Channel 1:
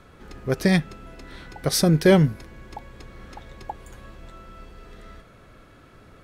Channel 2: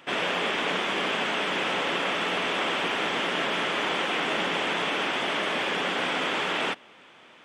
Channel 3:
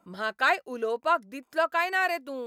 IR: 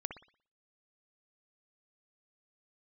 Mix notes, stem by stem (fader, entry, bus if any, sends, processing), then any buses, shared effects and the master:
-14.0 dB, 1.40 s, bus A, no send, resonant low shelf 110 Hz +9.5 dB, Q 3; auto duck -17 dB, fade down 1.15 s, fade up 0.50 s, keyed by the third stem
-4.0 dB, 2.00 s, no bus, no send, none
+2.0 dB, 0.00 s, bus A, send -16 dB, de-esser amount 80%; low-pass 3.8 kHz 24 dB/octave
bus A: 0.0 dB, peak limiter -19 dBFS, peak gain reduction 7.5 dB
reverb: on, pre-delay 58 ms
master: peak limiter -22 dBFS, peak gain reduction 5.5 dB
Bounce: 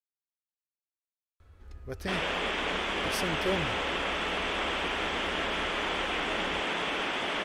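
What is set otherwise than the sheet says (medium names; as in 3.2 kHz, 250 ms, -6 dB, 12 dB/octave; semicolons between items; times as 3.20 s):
stem 3: muted; reverb: off; master: missing peak limiter -22 dBFS, peak gain reduction 5.5 dB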